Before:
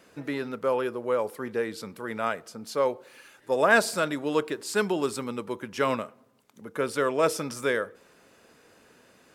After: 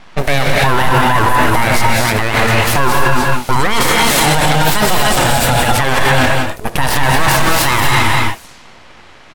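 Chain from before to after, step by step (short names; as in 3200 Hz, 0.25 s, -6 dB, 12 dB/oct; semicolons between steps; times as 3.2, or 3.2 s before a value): G.711 law mismatch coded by A; high shelf 5000 Hz +9 dB; notches 60/120/180/240 Hz; echo 0.198 s -10.5 dB; full-wave rectifier; non-linear reverb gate 0.33 s rising, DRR 0.5 dB; low-pass opened by the level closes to 2600 Hz, open at -39.5 dBFS; maximiser +28.5 dB; gain -1 dB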